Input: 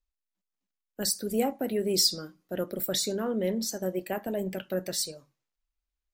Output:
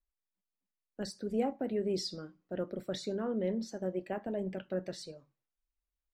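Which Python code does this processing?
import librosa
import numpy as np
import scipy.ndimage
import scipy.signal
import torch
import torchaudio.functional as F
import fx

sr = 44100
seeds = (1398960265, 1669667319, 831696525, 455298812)

y = fx.spacing_loss(x, sr, db_at_10k=23)
y = F.gain(torch.from_numpy(y), -3.5).numpy()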